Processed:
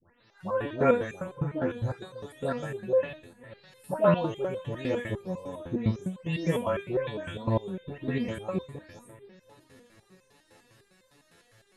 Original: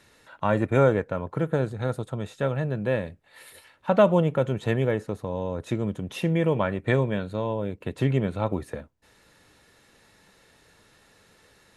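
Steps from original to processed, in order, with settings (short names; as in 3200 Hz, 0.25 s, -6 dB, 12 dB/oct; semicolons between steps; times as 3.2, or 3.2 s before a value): spectral delay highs late, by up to 0.372 s; dark delay 0.521 s, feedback 60%, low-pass 3700 Hz, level -21 dB; stepped resonator 9.9 Hz 86–520 Hz; gain +8.5 dB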